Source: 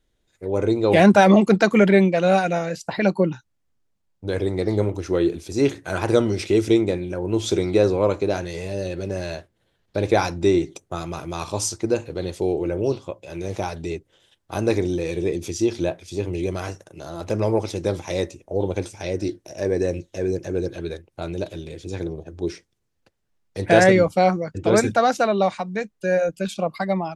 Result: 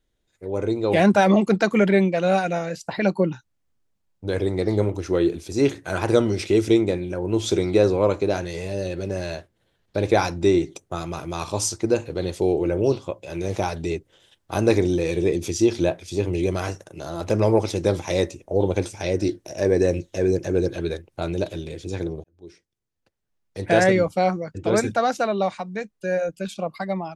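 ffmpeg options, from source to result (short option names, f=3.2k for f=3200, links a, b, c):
-filter_complex "[0:a]asplit=2[a][b];[a]atrim=end=22.24,asetpts=PTS-STARTPTS,afade=t=out:st=22.236:d=0.004:c=hsin[c];[b]atrim=start=22.24,asetpts=PTS-STARTPTS,afade=t=in:d=1.36[d];[c][d]concat=n=2:v=0:a=1,dynaudnorm=f=330:g=11:m=8dB,volume=-3.5dB"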